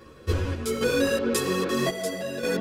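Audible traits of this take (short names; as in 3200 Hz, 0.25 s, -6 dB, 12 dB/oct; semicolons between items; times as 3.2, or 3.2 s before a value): random-step tremolo 3.7 Hz, depth 70%; a shimmering, thickened sound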